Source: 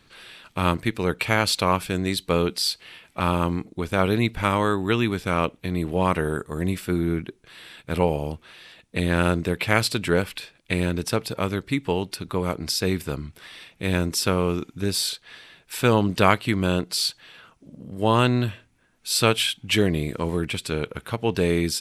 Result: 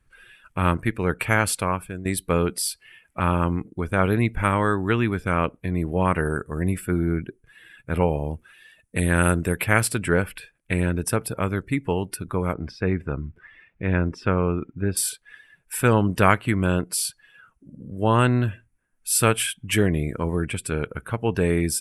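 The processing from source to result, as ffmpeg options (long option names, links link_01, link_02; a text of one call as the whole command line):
ffmpeg -i in.wav -filter_complex "[0:a]asettb=1/sr,asplit=3[link_01][link_02][link_03];[link_01]atrim=end=8.334[link_04];[link_02]atrim=start=8.33:end=9.64,asetpts=PTS-STARTPTS,afade=type=in:duration=0.004:curve=qsin,afade=type=out:start_time=1.306:duration=0.004:curve=qsin,highshelf=frequency=5000:gain=8[link_05];[link_03]atrim=start=9.636[link_06];[link_04][link_05]acrossfade=duration=0.004:curve1=hsin:curve2=qsin[link_07];[link_07][link_06]acrossfade=duration=0.004:curve1=qsin:curve2=hsin,asettb=1/sr,asplit=3[link_08][link_09][link_10];[link_08]atrim=end=12.534[link_11];[link_09]atrim=start=12.53:end=14.97,asetpts=PTS-STARTPTS,afade=type=in:duration=0.004:curve=qsin,afade=type=out:start_time=2.436:duration=0.004:curve=qsin,lowpass=2600[link_12];[link_10]atrim=start=14.966[link_13];[link_11][link_12]acrossfade=duration=0.004:curve1=hsin:curve2=qsin[link_14];[link_14][link_13]acrossfade=duration=0.004:curve1=qsin:curve2=hsin,asplit=2[link_15][link_16];[link_15]atrim=end=2.05,asetpts=PTS-STARTPTS,afade=type=out:start_time=1.4:duration=0.65:silence=0.266073[link_17];[link_16]atrim=start=2.05,asetpts=PTS-STARTPTS,afade=type=in:duration=0.004:curve=hsin:silence=0.266073[link_18];[link_17][link_18]concat=n=2:v=0:a=1,lowshelf=frequency=94:gain=8.5,afftdn=noise_reduction=15:noise_floor=-42,equalizer=frequency=1600:width_type=o:width=0.67:gain=5,equalizer=frequency=4000:width_type=o:width=0.67:gain=-12,equalizer=frequency=10000:width_type=o:width=0.67:gain=11,volume=-1dB" out.wav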